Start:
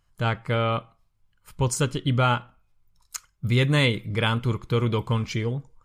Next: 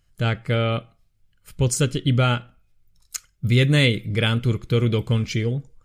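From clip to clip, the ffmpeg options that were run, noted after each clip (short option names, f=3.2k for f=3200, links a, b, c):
-af "equalizer=f=990:w=2.2:g=-14.5,volume=4dB"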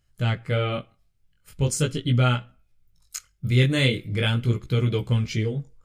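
-af "flanger=delay=15.5:depth=8:speed=0.41"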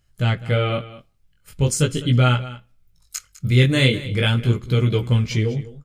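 -af "aecho=1:1:203:0.15,volume=4dB"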